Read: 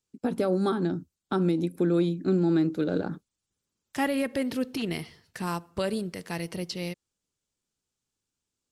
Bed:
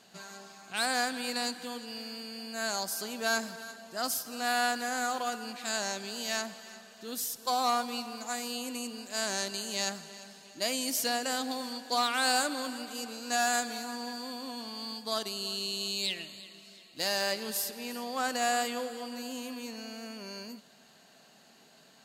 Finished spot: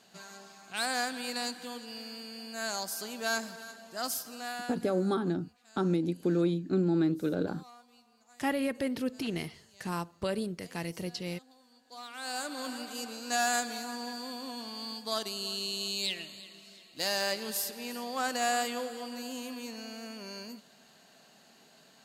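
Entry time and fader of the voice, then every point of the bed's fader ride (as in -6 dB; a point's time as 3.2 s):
4.45 s, -3.5 dB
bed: 4.25 s -2 dB
5.14 s -25.5 dB
11.67 s -25.5 dB
12.71 s -0.5 dB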